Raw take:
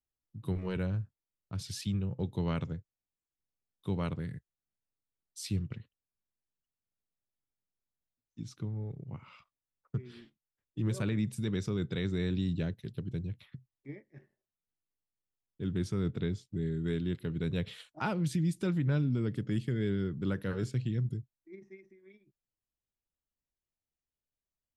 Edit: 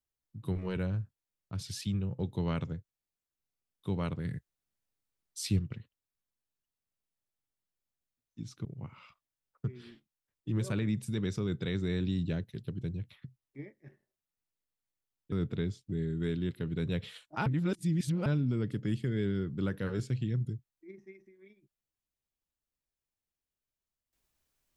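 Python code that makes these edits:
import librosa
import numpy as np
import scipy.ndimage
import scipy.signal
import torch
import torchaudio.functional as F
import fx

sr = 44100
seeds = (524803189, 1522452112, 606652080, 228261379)

y = fx.edit(x, sr, fx.clip_gain(start_s=4.25, length_s=1.34, db=4.0),
    fx.cut(start_s=8.65, length_s=0.3),
    fx.cut(start_s=15.62, length_s=0.34),
    fx.reverse_span(start_s=18.1, length_s=0.8), tone=tone)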